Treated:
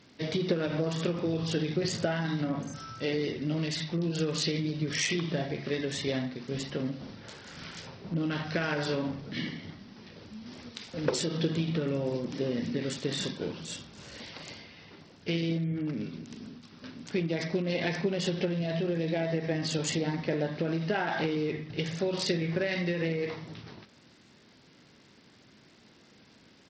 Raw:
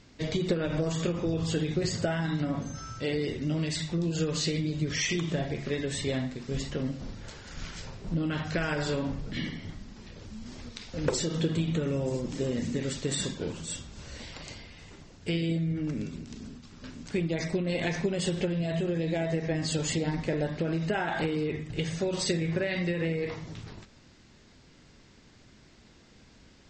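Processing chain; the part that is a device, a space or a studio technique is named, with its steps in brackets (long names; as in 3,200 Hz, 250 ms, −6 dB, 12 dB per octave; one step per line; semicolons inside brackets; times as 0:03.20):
Bluetooth headset (high-pass filter 140 Hz 12 dB per octave; downsampling to 16,000 Hz; SBC 64 kbit/s 44,100 Hz)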